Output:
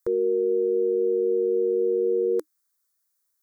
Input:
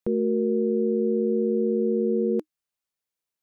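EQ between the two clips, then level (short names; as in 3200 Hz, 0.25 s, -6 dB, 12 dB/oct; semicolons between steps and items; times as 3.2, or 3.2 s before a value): tilt +2.5 dB/oct; bell 240 Hz -2.5 dB 0.53 oct; fixed phaser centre 740 Hz, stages 6; +6.0 dB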